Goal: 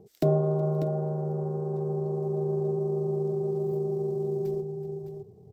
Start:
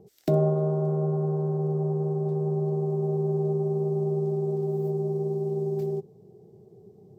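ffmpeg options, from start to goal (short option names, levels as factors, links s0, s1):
-filter_complex "[0:a]asubboost=boost=5.5:cutoff=81,asplit=2[s0][s1];[s1]aecho=0:1:487|786:0.2|0.355[s2];[s0][s2]amix=inputs=2:normalize=0,atempo=1.3"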